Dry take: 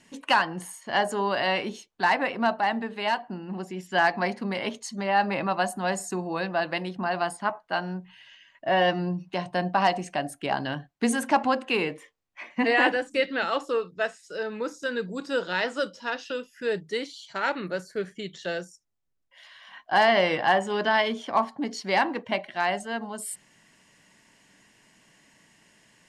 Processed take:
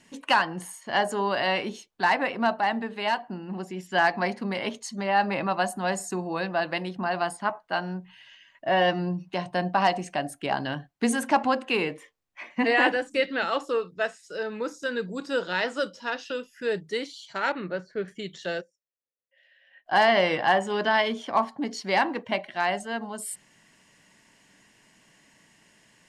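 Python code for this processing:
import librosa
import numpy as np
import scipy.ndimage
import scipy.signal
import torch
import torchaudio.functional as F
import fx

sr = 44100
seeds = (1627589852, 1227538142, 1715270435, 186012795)

y = fx.air_absorb(x, sr, metres=210.0, at=(17.52, 18.08))
y = fx.vowel_filter(y, sr, vowel='e', at=(18.6, 19.85), fade=0.02)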